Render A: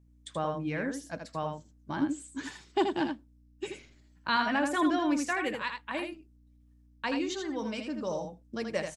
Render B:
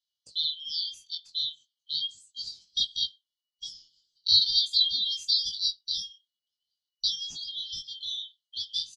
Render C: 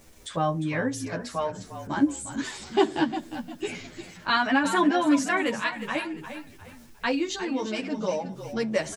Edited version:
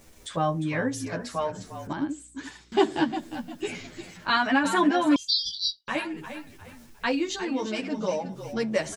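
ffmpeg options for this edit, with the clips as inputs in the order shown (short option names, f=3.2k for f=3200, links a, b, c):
-filter_complex "[2:a]asplit=3[a][b][c];[a]atrim=end=1.932[d];[0:a]atrim=start=1.928:end=2.722[e];[b]atrim=start=2.718:end=5.162[f];[1:a]atrim=start=5.158:end=5.882[g];[c]atrim=start=5.878[h];[d][e]acrossfade=d=0.004:c1=hsin:c2=hsin[i];[i][f]acrossfade=d=0.004:c1=hsin:c2=hsin[j];[j][g]acrossfade=d=0.004:c1=hsin:c2=hsin[k];[k][h]acrossfade=d=0.004:c1=hsin:c2=hsin"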